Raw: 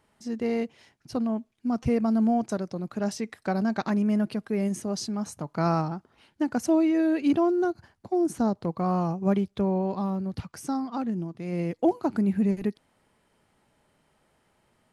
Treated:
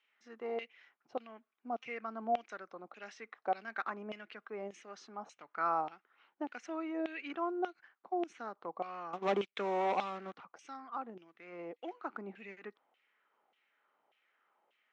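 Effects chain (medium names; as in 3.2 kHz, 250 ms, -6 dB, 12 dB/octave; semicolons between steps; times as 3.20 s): LFO band-pass saw down 1.7 Hz 700–2900 Hz; 9.13–10.36 s: waveshaping leveller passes 3; cabinet simulation 310–6000 Hz, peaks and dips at 630 Hz -5 dB, 940 Hz -7 dB, 1.7 kHz -4 dB, 4.7 kHz -9 dB; trim +3 dB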